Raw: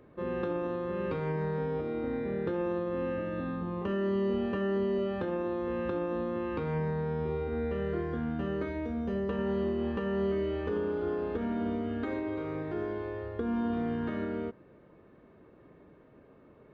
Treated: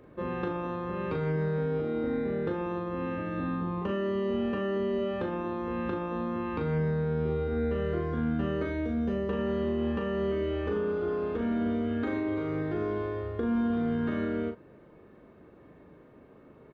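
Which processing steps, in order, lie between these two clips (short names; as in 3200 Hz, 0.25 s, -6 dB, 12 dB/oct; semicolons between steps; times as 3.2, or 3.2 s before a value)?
in parallel at +1 dB: vocal rider; on the sum: doubler 39 ms -6 dB; gain -5.5 dB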